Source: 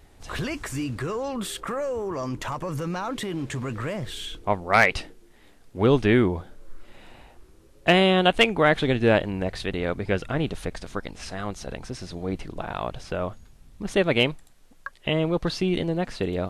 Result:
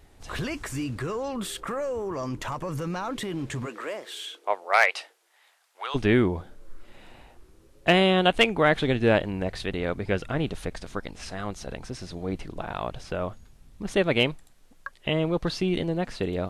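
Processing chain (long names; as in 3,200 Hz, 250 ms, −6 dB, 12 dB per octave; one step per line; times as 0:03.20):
0:03.65–0:05.94: high-pass filter 290 Hz → 920 Hz 24 dB per octave
level −1.5 dB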